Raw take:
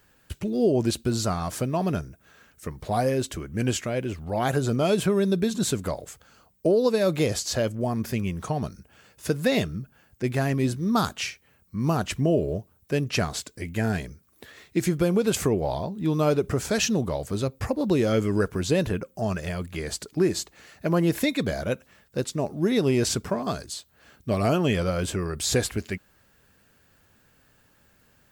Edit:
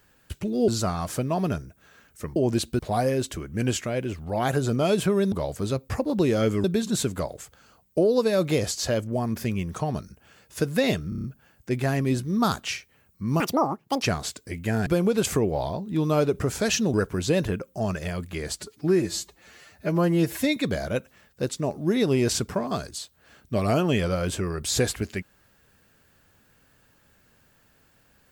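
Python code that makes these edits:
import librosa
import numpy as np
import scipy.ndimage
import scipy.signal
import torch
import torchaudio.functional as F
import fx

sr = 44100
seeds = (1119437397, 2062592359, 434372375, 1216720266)

y = fx.edit(x, sr, fx.move(start_s=0.68, length_s=0.43, to_s=2.79),
    fx.stutter(start_s=9.77, slice_s=0.03, count=6),
    fx.speed_span(start_s=11.93, length_s=1.2, speed=1.92),
    fx.cut(start_s=13.97, length_s=0.99),
    fx.move(start_s=17.03, length_s=1.32, to_s=5.32),
    fx.stretch_span(start_s=20.0, length_s=1.32, factor=1.5), tone=tone)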